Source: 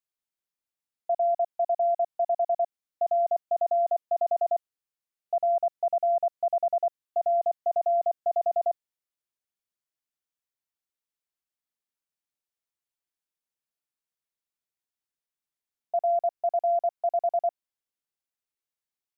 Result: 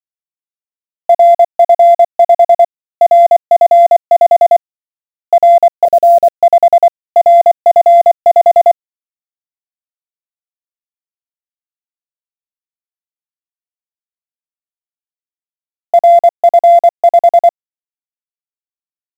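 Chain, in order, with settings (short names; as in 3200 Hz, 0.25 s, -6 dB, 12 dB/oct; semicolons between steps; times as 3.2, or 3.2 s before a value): Wiener smoothing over 15 samples; 5.85–6.34 elliptic low-pass 590 Hz, stop band 80 dB; requantised 10-bit, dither none; maximiser +29 dB; gain -1 dB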